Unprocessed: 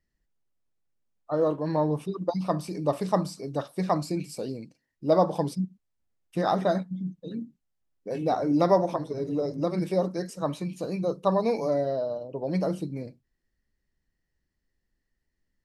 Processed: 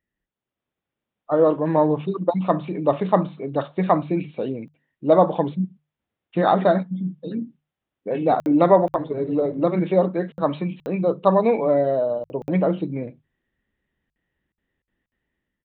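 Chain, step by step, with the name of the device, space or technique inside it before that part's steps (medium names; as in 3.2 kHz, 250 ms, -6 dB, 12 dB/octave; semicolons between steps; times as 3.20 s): call with lost packets (high-pass 120 Hz 6 dB/octave; resampled via 8 kHz; level rider gain up to 8 dB; lost packets of 60 ms random); hum notches 50/100/150 Hz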